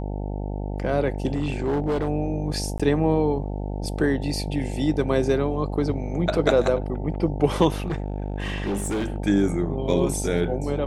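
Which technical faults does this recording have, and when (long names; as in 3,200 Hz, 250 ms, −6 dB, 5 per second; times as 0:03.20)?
mains buzz 50 Hz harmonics 18 −29 dBFS
0:01.34–0:02.09: clipping −19.5 dBFS
0:02.78–0:02.80: drop-out 16 ms
0:07.76–0:09.16: clipping −22 dBFS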